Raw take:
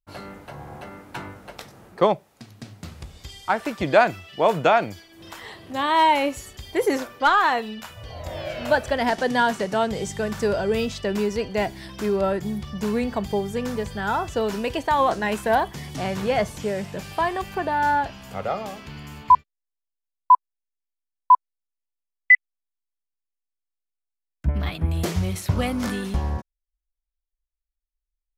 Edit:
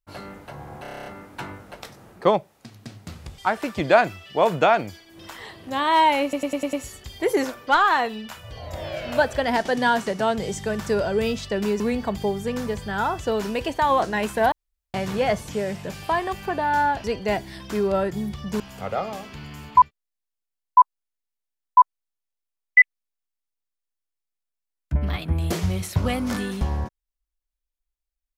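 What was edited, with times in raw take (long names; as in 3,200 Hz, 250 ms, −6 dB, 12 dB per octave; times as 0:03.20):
0:00.82: stutter 0.03 s, 9 plays
0:03.14–0:03.41: remove
0:06.26: stutter 0.10 s, 6 plays
0:11.33–0:12.89: move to 0:18.13
0:15.61–0:16.03: fill with room tone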